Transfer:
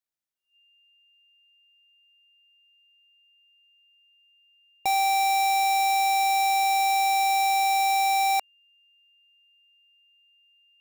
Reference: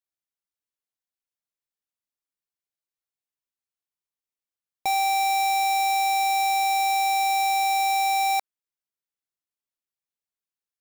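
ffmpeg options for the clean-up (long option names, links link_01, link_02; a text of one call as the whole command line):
ffmpeg -i in.wav -af "bandreject=frequency=2800:width=30" out.wav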